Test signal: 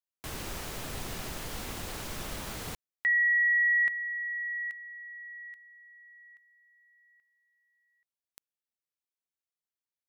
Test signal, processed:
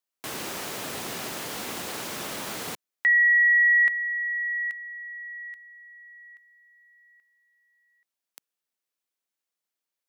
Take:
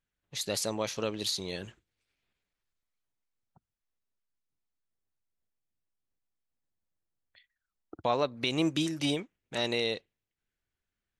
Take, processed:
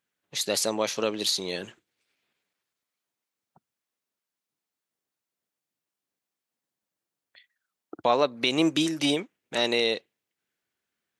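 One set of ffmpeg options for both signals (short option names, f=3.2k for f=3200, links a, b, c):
-af "highpass=210,volume=6dB"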